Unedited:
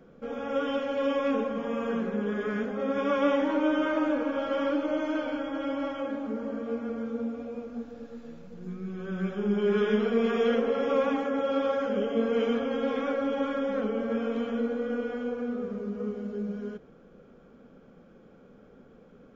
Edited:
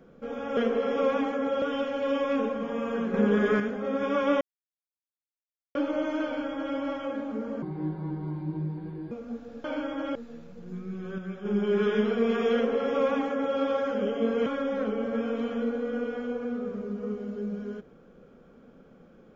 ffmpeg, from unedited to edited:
-filter_complex "[0:a]asplit=14[a][b][c][d][e][f][g][h][i][j][k][l][m][n];[a]atrim=end=0.572[o];[b]atrim=start=10.488:end=11.542[p];[c]atrim=start=0.568:end=2.092[q];[d]atrim=start=2.088:end=2.552,asetpts=PTS-STARTPTS,volume=7dB[r];[e]atrim=start=2.548:end=3.36,asetpts=PTS-STARTPTS,afade=t=out:st=0.808:d=0.004:c=hsin[s];[f]atrim=start=3.36:end=4.7,asetpts=PTS-STARTPTS,volume=0[t];[g]atrim=start=4.7:end=6.574,asetpts=PTS-STARTPTS,afade=t=in:d=0.004:c=hsin[u];[h]atrim=start=6.57:end=7.57,asetpts=PTS-STARTPTS,asetrate=29547,aresample=44100[v];[i]atrim=start=7.566:end=8.102[w];[j]atrim=start=5.198:end=5.712[x];[k]atrim=start=8.098:end=9.132[y];[l]atrim=start=9.128:end=9.402,asetpts=PTS-STARTPTS,volume=-6dB[z];[m]atrim=start=9.398:end=12.412[aa];[n]atrim=start=13.428[ab];[o][p]acrossfade=d=0.004:c1=hsin:c2=hsin[ac];[ac][q]acrossfade=d=0.004:c1=hsin:c2=hsin[ad];[ad][r]acrossfade=d=0.004:c1=hsin:c2=hsin[ae];[s][t][u]concat=n=3:v=0:a=1[af];[ae][af]acrossfade=d=0.004:c1=hsin:c2=hsin[ag];[ag][v]acrossfade=d=0.004:c1=hsin:c2=hsin[ah];[ah][w]acrossfade=d=0.004:c1=hsin:c2=hsin[ai];[ai][x]acrossfade=d=0.004:c1=hsin:c2=hsin[aj];[aj][y]acrossfade=d=0.004:c1=hsin:c2=hsin[ak];[ak][z]acrossfade=d=0.004:c1=hsin:c2=hsin[al];[al][aa]acrossfade=d=0.004:c1=hsin:c2=hsin[am];[am][ab]acrossfade=d=0.004:c1=hsin:c2=hsin"

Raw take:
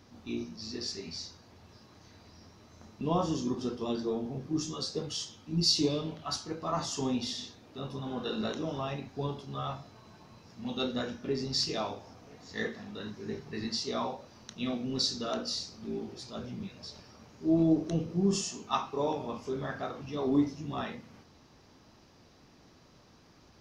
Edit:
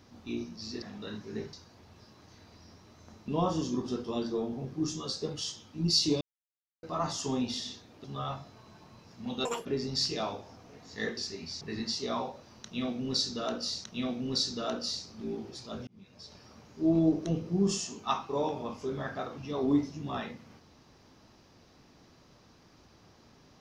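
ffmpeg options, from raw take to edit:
-filter_complex "[0:a]asplit=12[a][b][c][d][e][f][g][h][i][j][k][l];[a]atrim=end=0.822[m];[b]atrim=start=12.748:end=13.462[n];[c]atrim=start=1.258:end=5.94,asetpts=PTS-STARTPTS,afade=t=out:st=4.678:d=0.004:c=hsin[o];[d]atrim=start=5.94:end=6.56,asetpts=PTS-STARTPTS,volume=0[p];[e]atrim=start=6.56:end=7.772,asetpts=PTS-STARTPTS,afade=t=in:d=0.004:c=hsin[q];[f]atrim=start=9.428:end=10.844[r];[g]atrim=start=10.84:end=11.23,asetpts=PTS-STARTPTS,asetrate=85113,aresample=44100,atrim=end_sample=8911,asetpts=PTS-STARTPTS[s];[h]atrim=start=11.226:end=12.752[t];[i]atrim=start=0.818:end=1.262[u];[j]atrim=start=13.458:end=15.692[v];[k]atrim=start=14.478:end=16.51,asetpts=PTS-STARTPTS,afade=t=out:st=2.028:d=0.004:c=hsin[w];[l]atrim=start=16.51,asetpts=PTS-STARTPTS,afade=t=in:d=0.6[x];[m][n]acrossfade=d=0.004:c1=hsin:c2=hsin[y];[o][p][q]concat=n=3:v=0:a=1[z];[y][z]acrossfade=d=0.004:c1=hsin:c2=hsin[aa];[aa][r]acrossfade=d=0.004:c1=hsin:c2=hsin[ab];[ab][s]acrossfade=d=0.004:c1=hsin:c2=hsin[ac];[ac][t]acrossfade=d=0.004:c1=hsin:c2=hsin[ad];[ad][u]acrossfade=d=0.004:c1=hsin:c2=hsin[ae];[ae][v]acrossfade=d=0.004:c1=hsin:c2=hsin[af];[w][x]concat=n=2:v=0:a=1[ag];[af][ag]acrossfade=d=0.004:c1=hsin:c2=hsin"

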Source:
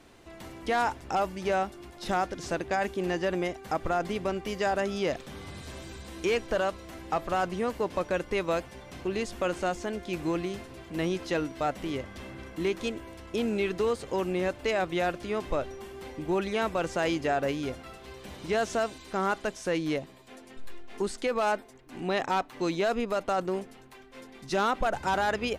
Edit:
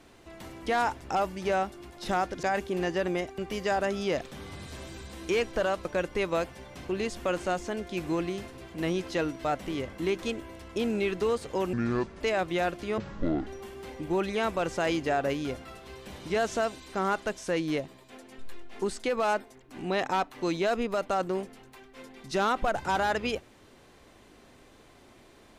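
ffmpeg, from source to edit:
-filter_complex "[0:a]asplit=9[a][b][c][d][e][f][g][h][i];[a]atrim=end=2.432[j];[b]atrim=start=2.698:end=3.652[k];[c]atrim=start=4.328:end=6.802[l];[d]atrim=start=8.008:end=12.092[m];[e]atrim=start=12.508:end=14.314[n];[f]atrim=start=14.31:end=14.62,asetpts=PTS-STARTPTS,asetrate=28665,aresample=44100,atrim=end_sample=21032,asetpts=PTS-STARTPTS[o];[g]atrim=start=14.616:end=15.394[p];[h]atrim=start=15.39:end=15.65,asetpts=PTS-STARTPTS,asetrate=23373,aresample=44100[q];[i]atrim=start=15.646[r];[j][k]acrossfade=d=0.004:c1=hsin:c2=hsin[s];[s][l]acrossfade=d=0.004:c1=hsin:c2=hsin[t];[t][m]acrossfade=d=0.004:c1=hsin:c2=hsin[u];[u][n]acrossfade=d=0.004:c1=hsin:c2=hsin[v];[v][o]acrossfade=d=0.004:c1=hsin:c2=hsin[w];[w][p]acrossfade=d=0.004:c1=hsin:c2=hsin[x];[x][q]acrossfade=d=0.004:c1=hsin:c2=hsin[y];[y][r]acrossfade=d=0.004:c1=hsin:c2=hsin"

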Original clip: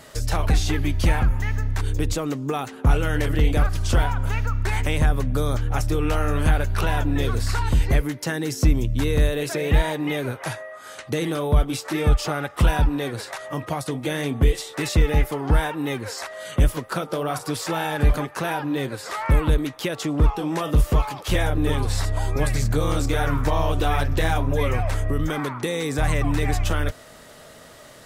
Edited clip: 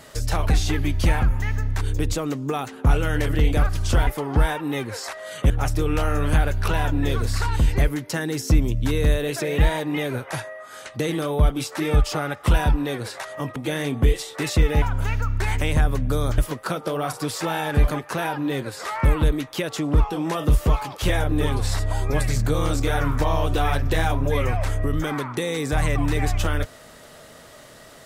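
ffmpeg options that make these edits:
-filter_complex "[0:a]asplit=6[a][b][c][d][e][f];[a]atrim=end=4.072[g];[b]atrim=start=15.208:end=16.642[h];[c]atrim=start=5.628:end=13.692[i];[d]atrim=start=13.948:end=15.212[j];[e]atrim=start=4.068:end=5.632[k];[f]atrim=start=16.638[l];[g][h]acrossfade=d=0.004:c1=hsin:c2=hsin[m];[m][i]acrossfade=d=0.004:c1=hsin:c2=hsin[n];[n][j]acrossfade=d=0.004:c1=hsin:c2=hsin[o];[o][k]acrossfade=d=0.004:c1=hsin:c2=hsin[p];[p][l]acrossfade=d=0.004:c1=hsin:c2=hsin"

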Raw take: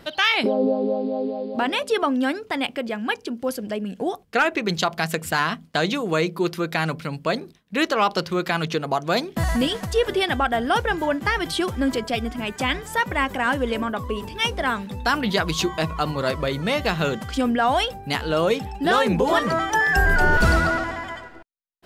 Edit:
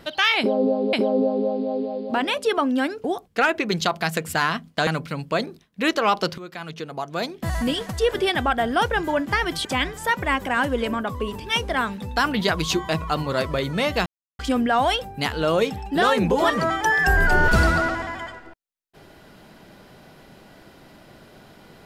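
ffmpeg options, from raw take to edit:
-filter_complex "[0:a]asplit=8[a][b][c][d][e][f][g][h];[a]atrim=end=0.932[i];[b]atrim=start=0.378:end=2.492[j];[c]atrim=start=4.008:end=5.842[k];[d]atrim=start=6.808:end=8.32,asetpts=PTS-STARTPTS,afade=t=out:st=1.508:d=0.004:c=hsin:silence=0.16788[l];[e]atrim=start=8.32:end=11.592,asetpts=PTS-STARTPTS,afade=t=in:d=1.78:silence=0.16788[m];[f]atrim=start=12.538:end=16.95,asetpts=PTS-STARTPTS,afade=t=out:st=4.408:d=0.004:c=hsin[n];[g]atrim=start=16.95:end=17.28,asetpts=PTS-STARTPTS,volume=0[o];[h]atrim=start=17.28,asetpts=PTS-STARTPTS,afade=t=in:d=0.004:c=hsin[p];[i][j]acrossfade=d=0.004:c1=hsin:c2=hsin[q];[q][k]acrossfade=d=0.004:c1=hsin:c2=hsin[r];[l][m]concat=n=2:v=0:a=1[s];[r][s]acrossfade=d=0.004:c1=hsin:c2=hsin[t];[n][o][p]concat=n=3:v=0:a=1[u];[t][u]acrossfade=d=0.004:c1=hsin:c2=hsin"

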